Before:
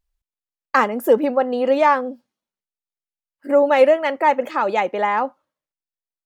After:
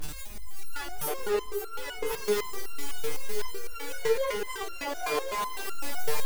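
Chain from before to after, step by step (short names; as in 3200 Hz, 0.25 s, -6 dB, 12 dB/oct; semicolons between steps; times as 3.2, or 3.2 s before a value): zero-crossing step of -17 dBFS; in parallel at +1 dB: compressor 6:1, threshold -20 dBFS, peak gain reduction 12.5 dB; on the sum: formant-preserving pitch shift +9 st; overloaded stage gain 17 dB; on a send: echo with dull and thin repeats by turns 0.266 s, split 1000 Hz, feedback 81%, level -2 dB; on the sum: stepped resonator 7.9 Hz 150–1400 Hz; gain -1.5 dB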